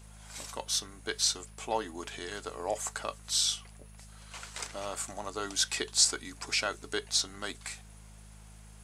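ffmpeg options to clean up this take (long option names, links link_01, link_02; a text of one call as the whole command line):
ffmpeg -i in.wav -af "bandreject=frequency=52.6:width_type=h:width=4,bandreject=frequency=105.2:width_type=h:width=4,bandreject=frequency=157.8:width_type=h:width=4,bandreject=frequency=210.4:width_type=h:width=4" out.wav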